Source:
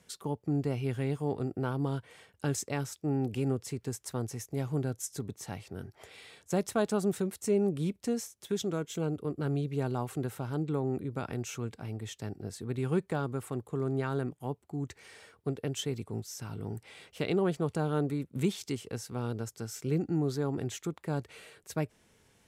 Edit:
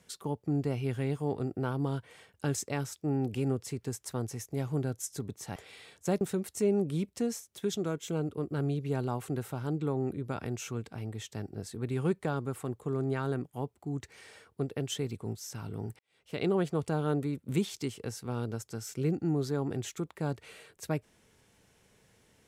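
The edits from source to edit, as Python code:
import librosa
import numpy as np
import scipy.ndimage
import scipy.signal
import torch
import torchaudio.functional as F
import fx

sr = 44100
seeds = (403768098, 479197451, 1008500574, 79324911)

y = fx.edit(x, sr, fx.cut(start_s=5.56, length_s=0.45),
    fx.cut(start_s=6.66, length_s=0.42),
    fx.fade_in_span(start_s=16.86, length_s=0.45, curve='qua'), tone=tone)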